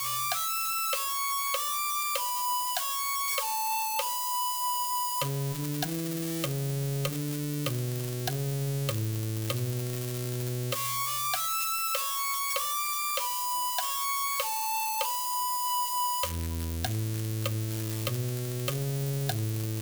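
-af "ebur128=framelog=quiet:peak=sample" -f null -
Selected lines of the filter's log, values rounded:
Integrated loudness:
  I:         -29.4 LUFS
  Threshold: -39.4 LUFS
Loudness range:
  LRA:         3.3 LU
  Threshold: -49.4 LUFS
  LRA low:   -31.4 LUFS
  LRA high:  -28.1 LUFS
Sample peak:
  Peak:      -15.5 dBFS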